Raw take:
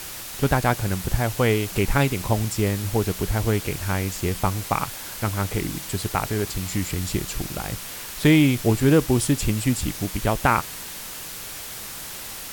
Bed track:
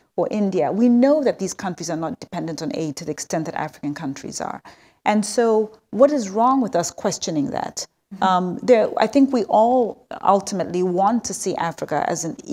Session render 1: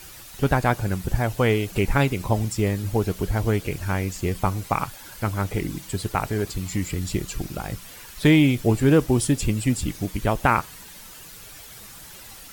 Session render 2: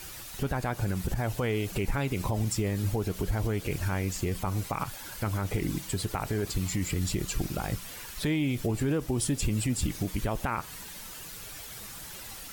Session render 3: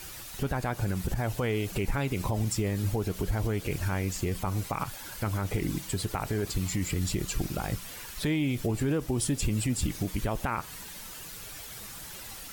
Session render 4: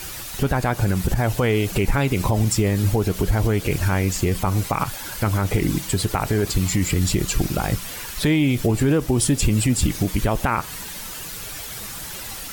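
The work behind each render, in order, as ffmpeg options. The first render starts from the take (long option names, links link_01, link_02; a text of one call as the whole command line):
ffmpeg -i in.wav -af "afftdn=noise_reduction=10:noise_floor=-36" out.wav
ffmpeg -i in.wav -af "acompressor=threshold=-21dB:ratio=4,alimiter=limit=-19dB:level=0:latency=1:release=38" out.wav
ffmpeg -i in.wav -af anull out.wav
ffmpeg -i in.wav -af "volume=9.5dB" out.wav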